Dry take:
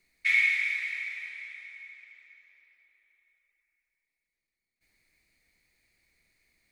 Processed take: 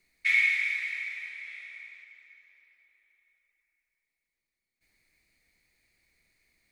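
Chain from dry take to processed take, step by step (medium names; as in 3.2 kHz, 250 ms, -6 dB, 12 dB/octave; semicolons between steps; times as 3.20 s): 1.41–2.03 s: flutter echo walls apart 9 m, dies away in 0.71 s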